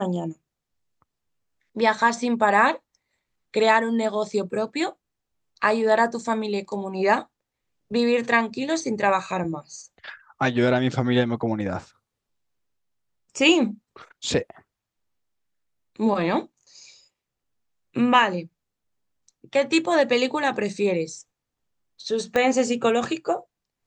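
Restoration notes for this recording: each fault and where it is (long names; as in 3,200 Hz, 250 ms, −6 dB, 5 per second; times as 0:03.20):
0:22.36: click −11 dBFS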